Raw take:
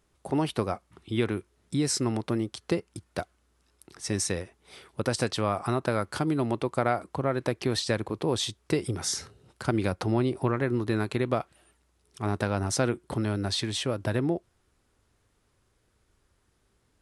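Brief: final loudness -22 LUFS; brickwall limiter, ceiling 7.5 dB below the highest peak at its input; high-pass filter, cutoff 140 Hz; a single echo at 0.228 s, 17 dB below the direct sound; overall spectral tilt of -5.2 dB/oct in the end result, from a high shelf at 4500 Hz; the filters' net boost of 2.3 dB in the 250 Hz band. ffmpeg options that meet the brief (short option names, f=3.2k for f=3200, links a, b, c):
-af "highpass=140,equalizer=f=250:t=o:g=3.5,highshelf=f=4.5k:g=-6,alimiter=limit=-17.5dB:level=0:latency=1,aecho=1:1:228:0.141,volume=8.5dB"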